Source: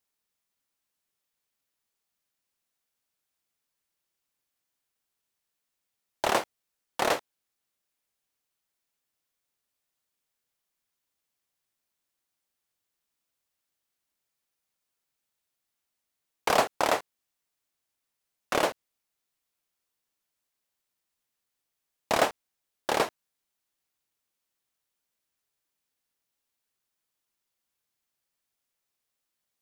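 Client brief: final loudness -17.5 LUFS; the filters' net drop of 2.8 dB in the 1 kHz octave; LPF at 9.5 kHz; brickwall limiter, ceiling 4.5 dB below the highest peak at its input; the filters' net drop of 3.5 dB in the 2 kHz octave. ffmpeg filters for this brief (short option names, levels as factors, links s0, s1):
-af "lowpass=9500,equalizer=f=1000:t=o:g=-3,equalizer=f=2000:t=o:g=-3.5,volume=5.62,alimiter=limit=0.944:level=0:latency=1"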